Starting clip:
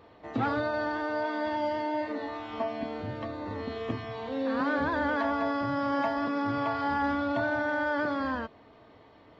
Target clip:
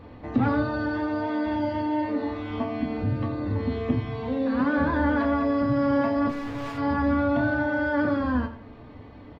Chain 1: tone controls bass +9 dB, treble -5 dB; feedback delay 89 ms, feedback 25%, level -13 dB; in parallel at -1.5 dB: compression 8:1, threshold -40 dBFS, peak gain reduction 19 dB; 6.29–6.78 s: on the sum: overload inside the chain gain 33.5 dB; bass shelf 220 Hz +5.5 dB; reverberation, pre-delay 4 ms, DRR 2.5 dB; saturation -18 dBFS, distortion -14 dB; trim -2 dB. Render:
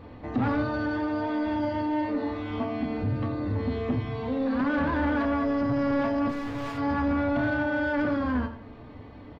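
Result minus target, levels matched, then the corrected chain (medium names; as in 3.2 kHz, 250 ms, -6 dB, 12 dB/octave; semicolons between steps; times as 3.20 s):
saturation: distortion +17 dB
tone controls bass +9 dB, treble -5 dB; feedback delay 89 ms, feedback 25%, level -13 dB; in parallel at -1.5 dB: compression 8:1, threshold -40 dBFS, peak gain reduction 19 dB; 6.29–6.78 s: on the sum: overload inside the chain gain 33.5 dB; bass shelf 220 Hz +5.5 dB; reverberation, pre-delay 4 ms, DRR 2.5 dB; saturation -7 dBFS, distortion -31 dB; trim -2 dB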